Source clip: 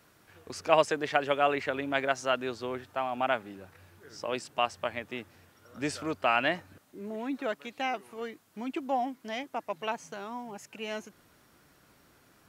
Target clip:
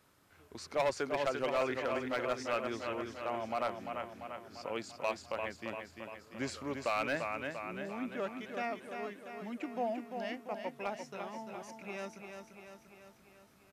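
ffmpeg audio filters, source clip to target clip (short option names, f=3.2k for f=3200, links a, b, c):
-af "aecho=1:1:313|626|939|1252|1565|1878|2191|2504:0.473|0.279|0.165|0.0972|0.0573|0.0338|0.02|0.0118,asetrate=40131,aresample=44100,volume=19.5dB,asoftclip=hard,volume=-19.5dB,volume=-6dB"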